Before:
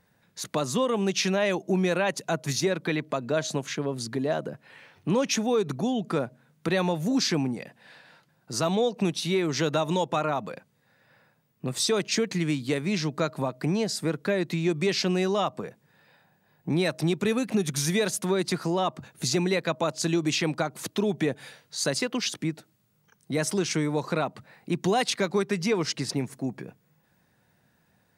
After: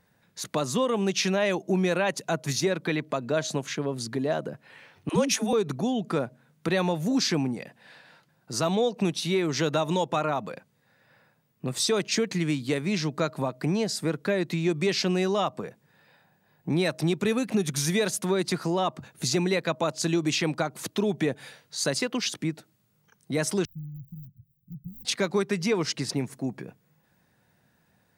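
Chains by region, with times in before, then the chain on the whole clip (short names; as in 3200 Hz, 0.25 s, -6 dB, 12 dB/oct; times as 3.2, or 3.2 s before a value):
5.09–5.53 bell 10000 Hz +13 dB 0.47 oct + dispersion lows, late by 74 ms, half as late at 320 Hz
23.65–25.05 switching dead time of 0.17 ms + inverse Chebyshev band-stop 430–7100 Hz, stop band 60 dB + band shelf 7500 Hz -10.5 dB
whole clip: dry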